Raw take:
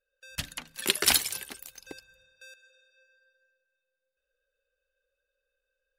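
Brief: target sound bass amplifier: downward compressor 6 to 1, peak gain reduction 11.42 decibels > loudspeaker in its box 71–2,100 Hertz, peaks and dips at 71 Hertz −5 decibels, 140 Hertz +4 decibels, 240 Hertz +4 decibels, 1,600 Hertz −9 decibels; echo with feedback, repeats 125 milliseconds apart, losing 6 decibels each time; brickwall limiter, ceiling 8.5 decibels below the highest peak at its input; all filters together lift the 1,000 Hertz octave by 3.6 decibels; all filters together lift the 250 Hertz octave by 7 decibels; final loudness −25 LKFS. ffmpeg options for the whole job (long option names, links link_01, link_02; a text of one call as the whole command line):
ffmpeg -i in.wav -af "equalizer=frequency=250:width_type=o:gain=6,equalizer=frequency=1000:width_type=o:gain=5.5,alimiter=limit=-12dB:level=0:latency=1,aecho=1:1:125|250|375|500|625|750:0.501|0.251|0.125|0.0626|0.0313|0.0157,acompressor=threshold=-33dB:ratio=6,highpass=frequency=71:width=0.5412,highpass=frequency=71:width=1.3066,equalizer=frequency=71:width_type=q:width=4:gain=-5,equalizer=frequency=140:width_type=q:width=4:gain=4,equalizer=frequency=240:width_type=q:width=4:gain=4,equalizer=frequency=1600:width_type=q:width=4:gain=-9,lowpass=frequency=2100:width=0.5412,lowpass=frequency=2100:width=1.3066,volume=21dB" out.wav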